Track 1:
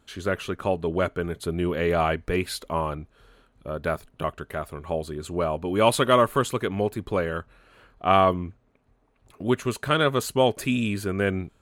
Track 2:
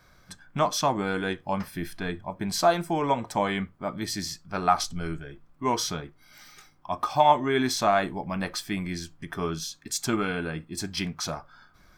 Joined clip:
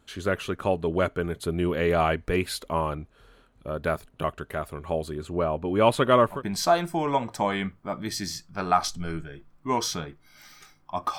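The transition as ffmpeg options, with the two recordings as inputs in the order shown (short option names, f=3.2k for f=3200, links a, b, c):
-filter_complex "[0:a]asettb=1/sr,asplit=3[a][b][c];[a]atrim=end=5.234[d];[b]atrim=start=5.23:end=6.43,asetpts=PTS-STARTPTS,afade=t=in:d=0.004:c=qsin,afade=t=out:st=1.196:d=0.004:c=qsin,highshelf=f=3.7k:g=-10.5[e];[c]atrim=start=6.426[f];[d][e]acrossfade=d=0.004:c1=hsin:c2=qsin[g];[g][f]acrossfade=d=0.004:c1=qsin:c2=hsin,apad=whole_dur=11.18,atrim=end=11.18,atrim=end=6.43,asetpts=PTS-STARTPTS[h];[1:a]atrim=start=2.23:end=7.14,asetpts=PTS-STARTPTS[i];[h][i]acrossfade=d=0.16:c1=tri:c2=tri"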